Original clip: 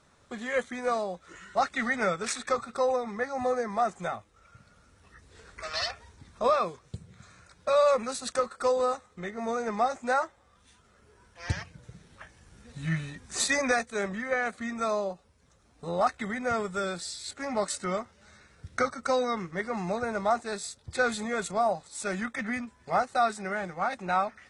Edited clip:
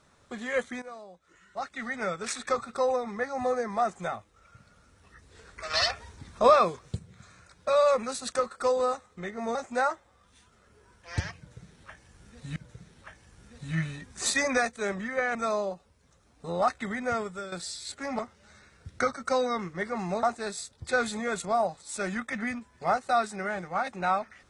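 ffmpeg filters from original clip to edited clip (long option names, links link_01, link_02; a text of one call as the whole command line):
ffmpeg -i in.wav -filter_complex "[0:a]asplit=10[link_01][link_02][link_03][link_04][link_05][link_06][link_07][link_08][link_09][link_10];[link_01]atrim=end=0.82,asetpts=PTS-STARTPTS,afade=type=out:start_time=0.816:duration=0.004:curve=hsin:silence=0.16788[link_11];[link_02]atrim=start=0.82:end=5.702,asetpts=PTS-STARTPTS,afade=type=in:duration=1.66:curve=qua:silence=0.16788[link_12];[link_03]atrim=start=5.698:end=6.992,asetpts=PTS-STARTPTS,volume=5.5dB[link_13];[link_04]atrim=start=6.988:end=9.552[link_14];[link_05]atrim=start=9.868:end=12.882[link_15];[link_06]atrim=start=11.698:end=14.492[link_16];[link_07]atrim=start=14.738:end=16.91,asetpts=PTS-STARTPTS,afade=type=out:start_time=1.742:duration=0.43:silence=0.266073[link_17];[link_08]atrim=start=16.91:end=17.582,asetpts=PTS-STARTPTS,afade=type=in:duration=0.004:curve=hsin:silence=0.266073[link_18];[link_09]atrim=start=17.968:end=20.012[link_19];[link_10]atrim=start=20.288[link_20];[link_11][link_12]concat=n=2:v=0:a=1[link_21];[link_21][link_13]acrossfade=duration=0.004:curve1=hsin:curve2=hsin[link_22];[link_22][link_14]acrossfade=duration=0.004:curve1=hsin:curve2=hsin[link_23];[link_23][link_15]acrossfade=duration=0.004:curve1=hsin:curve2=hsin[link_24];[link_24][link_16]acrossfade=duration=0.004:curve1=hsin:curve2=hsin[link_25];[link_17][link_18]concat=n=2:v=0:a=1[link_26];[link_25][link_26]acrossfade=duration=0.004:curve1=hsin:curve2=hsin[link_27];[link_27][link_19]acrossfade=duration=0.004:curve1=hsin:curve2=hsin[link_28];[link_28][link_20]acrossfade=duration=0.004:curve1=hsin:curve2=hsin" out.wav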